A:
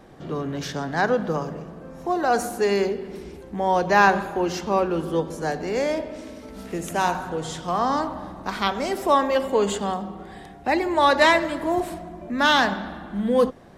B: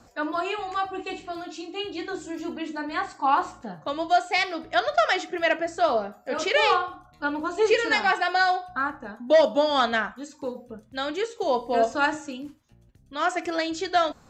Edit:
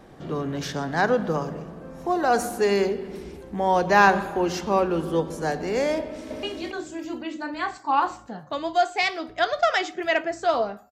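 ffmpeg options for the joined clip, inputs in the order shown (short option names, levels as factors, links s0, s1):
-filter_complex "[0:a]apad=whole_dur=10.91,atrim=end=10.91,atrim=end=6.432[s0];[1:a]atrim=start=1.778:end=6.26[s1];[s0][s1]acrossfade=d=0.004:c1=hsin:c2=hsin,asplit=2[s2][s3];[s3]afade=t=in:st=6.02:d=0.01,afade=t=out:st=6.43:d=0.01,aecho=0:1:280|560|840|1120:0.891251|0.222813|0.0557032|0.0139258[s4];[s2][s4]amix=inputs=2:normalize=0"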